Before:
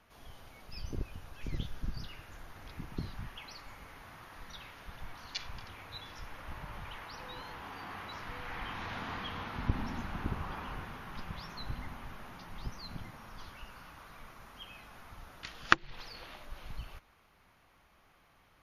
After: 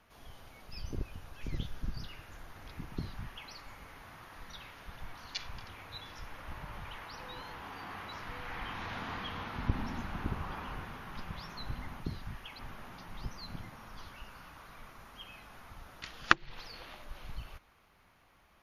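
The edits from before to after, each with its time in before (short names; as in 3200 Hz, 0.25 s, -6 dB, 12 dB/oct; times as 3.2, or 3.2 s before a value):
2.92–3.51 copy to 12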